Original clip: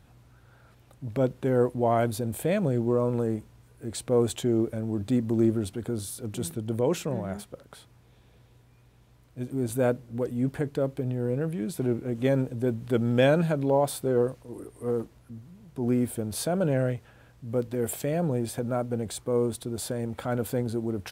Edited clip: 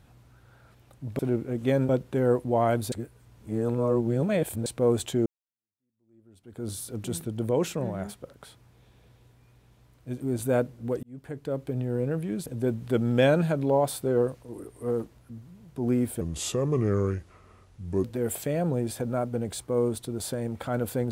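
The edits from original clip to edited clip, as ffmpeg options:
-filter_complex "[0:a]asplit=10[a][b][c][d][e][f][g][h][i][j];[a]atrim=end=1.192[k];[b]atrim=start=11.758:end=12.462[l];[c]atrim=start=1.188:end=2.222[m];[d]atrim=start=2.218:end=3.962,asetpts=PTS-STARTPTS,areverse[n];[e]atrim=start=3.958:end=4.56,asetpts=PTS-STARTPTS,afade=t=out:st=0.598:d=0.004:c=hsin[o];[f]atrim=start=4.56:end=10.33,asetpts=PTS-STARTPTS,afade=t=in:d=1.43:c=exp,afade=t=out:st=5.766:d=0.004:c=hsin[p];[g]atrim=start=10.33:end=11.762,asetpts=PTS-STARTPTS,afade=t=in:d=0.74[q];[h]atrim=start=12.458:end=16.214[r];[i]atrim=start=16.21:end=17.62,asetpts=PTS-STARTPTS,asetrate=33957,aresample=44100[s];[j]atrim=start=17.616[t];[k][l]acrossfade=d=0.004:c1=hsin:c2=hsin[u];[u][m]acrossfade=d=0.004:c1=hsin:c2=hsin[v];[v][n]acrossfade=d=0.004:c1=hsin:c2=hsin[w];[o][p][q]concat=n=3:v=0:a=1[x];[w][x]acrossfade=d=0.004:c1=hsin:c2=hsin[y];[y][r]acrossfade=d=0.004:c1=hsin:c2=hsin[z];[z][s]acrossfade=d=0.004:c1=hsin:c2=hsin[aa];[aa][t]acrossfade=d=0.004:c1=hsin:c2=hsin"

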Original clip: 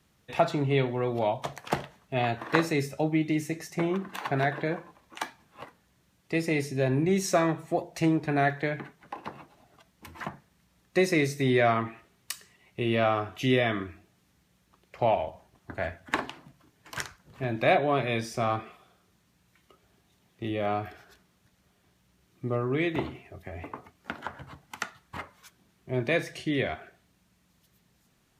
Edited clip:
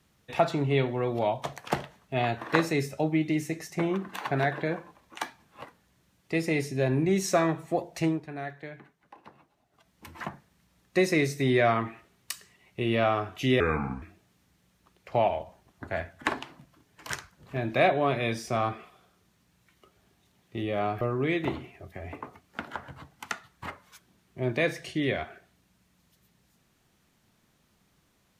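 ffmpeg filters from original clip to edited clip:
-filter_complex "[0:a]asplit=6[a][b][c][d][e][f];[a]atrim=end=8.26,asetpts=PTS-STARTPTS,afade=t=out:st=7.89:d=0.37:c=qsin:silence=0.251189[g];[b]atrim=start=8.26:end=9.71,asetpts=PTS-STARTPTS,volume=-12dB[h];[c]atrim=start=9.71:end=13.604,asetpts=PTS-STARTPTS,afade=t=in:d=0.37:c=qsin:silence=0.251189[i];[d]atrim=start=13.6:end=13.89,asetpts=PTS-STARTPTS,asetrate=30429,aresample=44100[j];[e]atrim=start=13.886:end=20.882[k];[f]atrim=start=22.518[l];[g][h][i]concat=n=3:v=0:a=1[m];[m][j]acrossfade=d=0.004:c1=hsin:c2=hsin[n];[n][k]acrossfade=d=0.004:c1=hsin:c2=hsin[o];[o][l]acrossfade=d=0.004:c1=hsin:c2=hsin"

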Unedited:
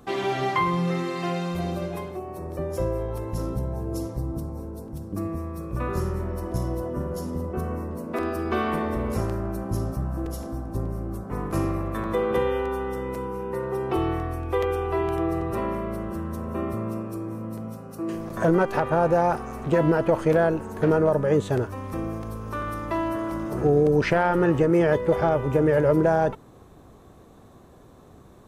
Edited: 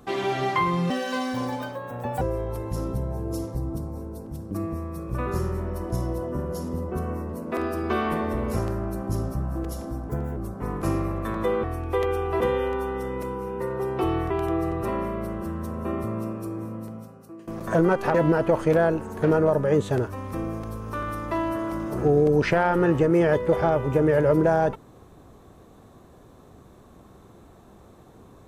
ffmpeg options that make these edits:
-filter_complex "[0:a]asplit=10[a][b][c][d][e][f][g][h][i][j];[a]atrim=end=0.904[k];[b]atrim=start=0.9:end=2.83,asetpts=PTS-STARTPTS,asetrate=64827,aresample=44100[l];[c]atrim=start=2.826:end=10.714[m];[d]atrim=start=10.71:end=11.06,asetpts=PTS-STARTPTS,asetrate=56889,aresample=44100,atrim=end_sample=11965,asetpts=PTS-STARTPTS[n];[e]atrim=start=11.056:end=12.332[o];[f]atrim=start=14.228:end=15.002[p];[g]atrim=start=12.328:end=14.232[q];[h]atrim=start=14.998:end=18.17,asetpts=PTS-STARTPTS,afade=t=out:st=2.332:d=0.84:silence=0.105925[r];[i]atrim=start=18.17:end=18.842,asetpts=PTS-STARTPTS,afade=t=in:d=0.004:c=hsin:silence=0.105925[s];[j]atrim=start=19.738[t];[k][l]acrossfade=d=0.004:c1=hsin:c2=hsin[u];[u][m]acrossfade=d=0.004:c1=hsin:c2=hsin[v];[v][n]acrossfade=d=0.004:c1=hsin:c2=hsin[w];[w][o]acrossfade=d=0.004:c1=hsin:c2=hsin[x];[x][p]acrossfade=d=0.004:c1=hsin:c2=hsin[y];[y][q]acrossfade=d=0.004:c1=hsin:c2=hsin[z];[r][s]concat=n=2:v=0:a=1[aa];[z][aa]acrossfade=d=0.004:c1=hsin:c2=hsin[ab];[ab][t]acrossfade=d=0.004:c1=hsin:c2=hsin"

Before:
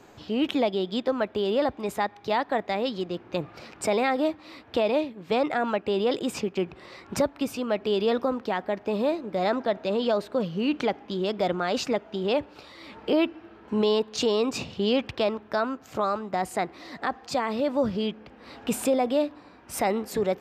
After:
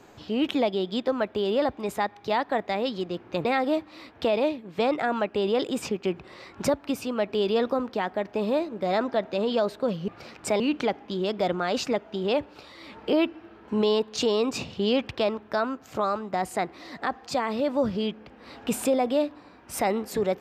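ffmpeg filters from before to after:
-filter_complex "[0:a]asplit=4[a][b][c][d];[a]atrim=end=3.452[e];[b]atrim=start=3.968:end=10.602[f];[c]atrim=start=3.448:end=3.972[g];[d]atrim=start=10.598[h];[e][f]acrossfade=d=0.004:c1=hsin:c2=hsin[i];[i][g]acrossfade=d=0.004:c1=hsin:c2=hsin[j];[j][h]acrossfade=d=0.004:c1=hsin:c2=hsin"

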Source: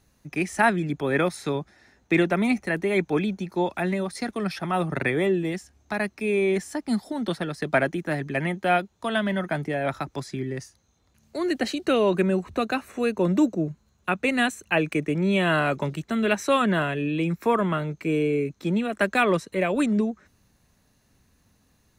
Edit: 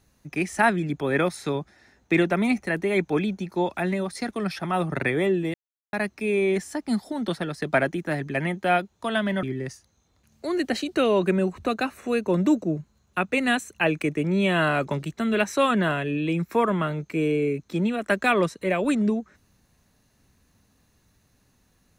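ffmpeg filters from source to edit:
-filter_complex "[0:a]asplit=4[a][b][c][d];[a]atrim=end=5.54,asetpts=PTS-STARTPTS,afade=t=out:st=5.536:d=0.004:c=hsin[e];[b]atrim=start=5.54:end=5.93,asetpts=PTS-STARTPTS,volume=0[f];[c]atrim=start=5.93:end=9.432,asetpts=PTS-STARTPTS,afade=t=in:d=0.004:c=hsin[g];[d]atrim=start=10.338[h];[e][f][g]concat=n=3:v=0:a=1[i];[i][h]acrossfade=d=0.004:c1=hsin:c2=hsin"

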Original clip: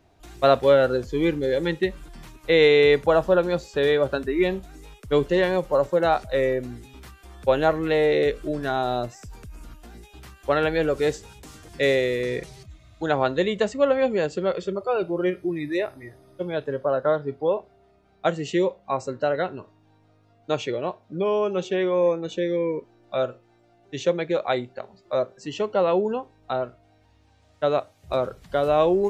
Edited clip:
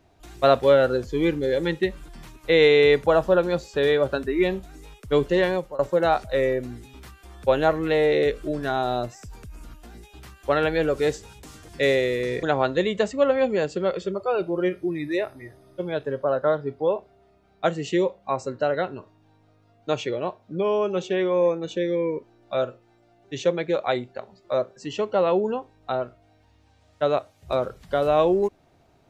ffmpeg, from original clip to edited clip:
-filter_complex "[0:a]asplit=3[a][b][c];[a]atrim=end=5.79,asetpts=PTS-STARTPTS,afade=t=out:st=5.49:d=0.3:silence=0.0794328[d];[b]atrim=start=5.79:end=12.432,asetpts=PTS-STARTPTS,afade=t=in:d=0.004:c=hsin:silence=0.0794328[e];[c]atrim=start=13.038[f];[d][e]concat=n=2:v=0:a=1[g];[g][f]acrossfade=d=0.004:c1=hsin:c2=hsin"

